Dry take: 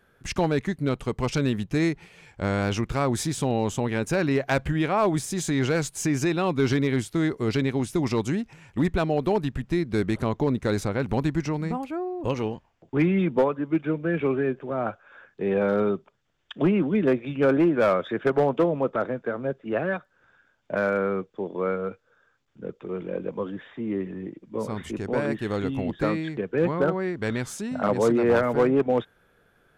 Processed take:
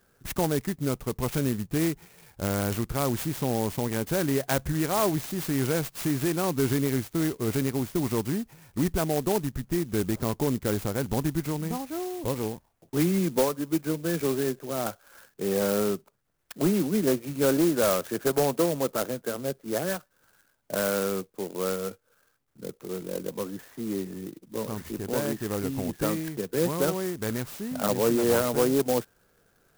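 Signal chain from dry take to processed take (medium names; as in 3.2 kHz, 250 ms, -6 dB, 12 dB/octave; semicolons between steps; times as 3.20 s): sampling jitter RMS 0.087 ms; trim -2.5 dB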